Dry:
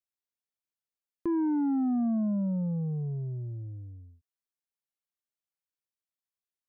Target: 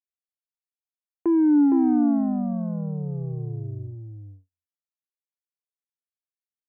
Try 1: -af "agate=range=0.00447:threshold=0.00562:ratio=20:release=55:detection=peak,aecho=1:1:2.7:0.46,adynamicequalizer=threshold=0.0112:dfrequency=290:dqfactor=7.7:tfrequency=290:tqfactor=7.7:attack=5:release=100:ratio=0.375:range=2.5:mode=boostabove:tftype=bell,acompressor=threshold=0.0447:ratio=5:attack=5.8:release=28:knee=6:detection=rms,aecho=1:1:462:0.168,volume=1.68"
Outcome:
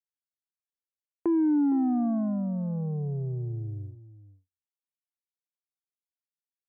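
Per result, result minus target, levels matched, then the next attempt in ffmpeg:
echo-to-direct -11 dB; compression: peak gain reduction +6.5 dB
-af "agate=range=0.00447:threshold=0.00562:ratio=20:release=55:detection=peak,aecho=1:1:2.7:0.46,adynamicequalizer=threshold=0.0112:dfrequency=290:dqfactor=7.7:tfrequency=290:tqfactor=7.7:attack=5:release=100:ratio=0.375:range=2.5:mode=boostabove:tftype=bell,acompressor=threshold=0.0447:ratio=5:attack=5.8:release=28:knee=6:detection=rms,aecho=1:1:462:0.596,volume=1.68"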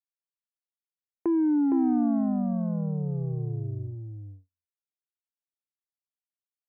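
compression: peak gain reduction +6.5 dB
-af "agate=range=0.00447:threshold=0.00562:ratio=20:release=55:detection=peak,aecho=1:1:2.7:0.46,adynamicequalizer=threshold=0.0112:dfrequency=290:dqfactor=7.7:tfrequency=290:tqfactor=7.7:attack=5:release=100:ratio=0.375:range=2.5:mode=boostabove:tftype=bell,aecho=1:1:462:0.596,volume=1.68"

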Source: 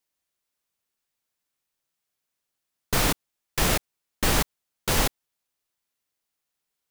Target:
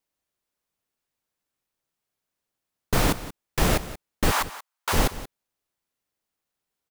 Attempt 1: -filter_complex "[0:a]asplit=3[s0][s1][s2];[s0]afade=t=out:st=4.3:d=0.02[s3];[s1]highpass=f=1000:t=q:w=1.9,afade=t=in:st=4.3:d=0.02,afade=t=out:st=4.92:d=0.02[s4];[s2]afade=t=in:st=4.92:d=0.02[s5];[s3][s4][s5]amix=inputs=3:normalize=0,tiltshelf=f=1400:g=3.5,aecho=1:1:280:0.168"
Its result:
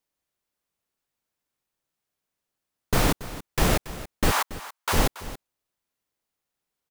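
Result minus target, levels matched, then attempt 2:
echo 100 ms late
-filter_complex "[0:a]asplit=3[s0][s1][s2];[s0]afade=t=out:st=4.3:d=0.02[s3];[s1]highpass=f=1000:t=q:w=1.9,afade=t=in:st=4.3:d=0.02,afade=t=out:st=4.92:d=0.02[s4];[s2]afade=t=in:st=4.92:d=0.02[s5];[s3][s4][s5]amix=inputs=3:normalize=0,tiltshelf=f=1400:g=3.5,aecho=1:1:180:0.168"

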